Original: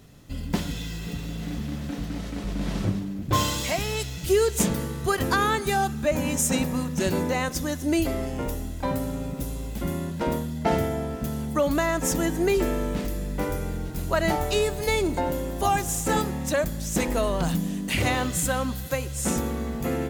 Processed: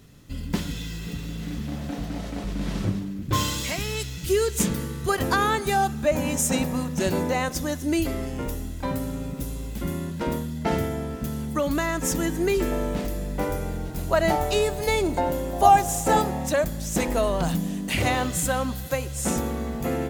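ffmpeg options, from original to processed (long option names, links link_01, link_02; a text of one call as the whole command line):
ffmpeg -i in.wav -af "asetnsamples=nb_out_samples=441:pad=0,asendcmd='1.67 equalizer g 6;2.45 equalizer g -2;3.1 equalizer g -8;5.09 equalizer g 3;7.79 equalizer g -4.5;12.72 equalizer g 4.5;15.53 equalizer g 11.5;16.47 equalizer g 3',equalizer=frequency=700:width_type=o:width=0.74:gain=-5" out.wav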